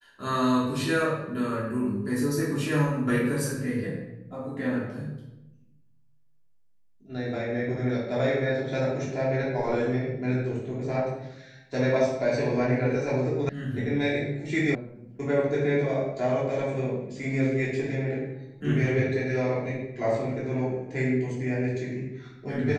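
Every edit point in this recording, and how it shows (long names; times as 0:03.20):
0:13.49: cut off before it has died away
0:14.75: cut off before it has died away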